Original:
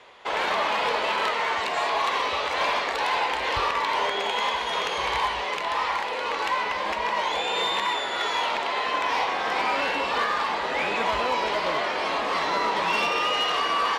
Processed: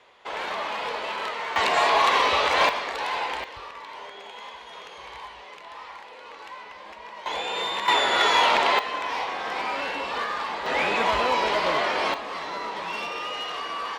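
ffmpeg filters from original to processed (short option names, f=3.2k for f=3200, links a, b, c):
-af "asetnsamples=n=441:p=0,asendcmd='1.56 volume volume 5dB;2.69 volume volume -3.5dB;3.44 volume volume -15dB;7.26 volume volume -3dB;7.88 volume volume 6.5dB;8.79 volume volume -4dB;10.66 volume volume 2dB;12.14 volume volume -7.5dB',volume=-5.5dB"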